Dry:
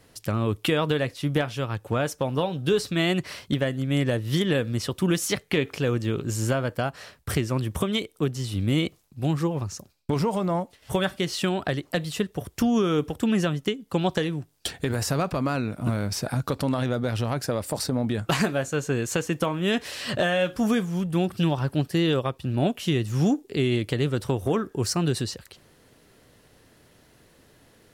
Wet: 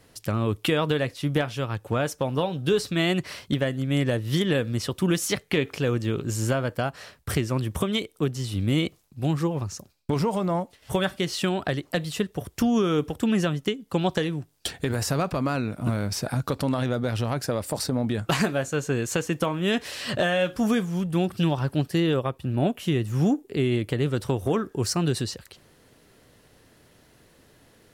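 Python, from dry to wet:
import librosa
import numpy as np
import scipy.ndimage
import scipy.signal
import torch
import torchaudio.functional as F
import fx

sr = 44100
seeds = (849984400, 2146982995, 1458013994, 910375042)

y = fx.peak_eq(x, sr, hz=4900.0, db=-6.0, octaves=1.5, at=(22.0, 24.06))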